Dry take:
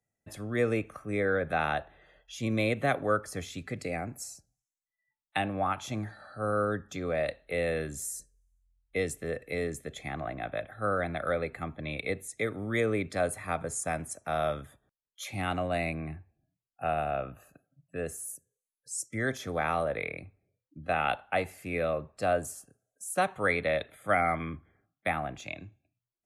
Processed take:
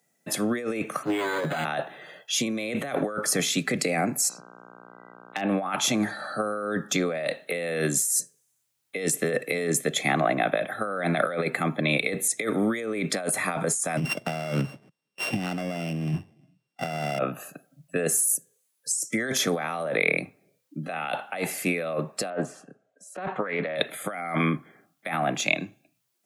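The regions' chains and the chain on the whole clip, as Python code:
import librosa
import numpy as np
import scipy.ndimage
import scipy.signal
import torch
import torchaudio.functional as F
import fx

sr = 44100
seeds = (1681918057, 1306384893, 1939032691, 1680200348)

y = fx.chain(x, sr, fx.lower_of_two(delay_ms=7.1),
    fx.doubler(ms=13.0, db=-8.0),
    fx.resample_linear(factor=8), at=(1.03, 1.65))
y = fx.lowpass(y, sr, hz=2800.0, slope=12, at=(4.28, 5.47), fade=0.02)
y = fx.dmg_buzz(y, sr, base_hz=60.0, harmonics=26, level_db=-63.0, tilt_db=-1, odd_only=False, at=(4.28, 5.47), fade=0.02)
y = fx.clip_hard(y, sr, threshold_db=-22.0, at=(4.28, 5.47), fade=0.02)
y = fx.chain(y, sr, fx.sample_sort(block=16),
    fx.riaa(side='playback'), at=(13.97, 17.19))
y = fx.chain(y, sr, fx.bandpass_edges(low_hz=110.0, high_hz=2100.0),
    fx.doppler_dist(depth_ms=0.12), at=(22.3, 23.76))
y = scipy.signal.sosfilt(scipy.signal.butter(6, 150.0, 'highpass', fs=sr, output='sos'), y)
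y = fx.high_shelf(y, sr, hz=3000.0, db=5.5)
y = fx.over_compress(y, sr, threshold_db=-36.0, ratio=-1.0)
y = F.gain(torch.from_numpy(y), 9.0).numpy()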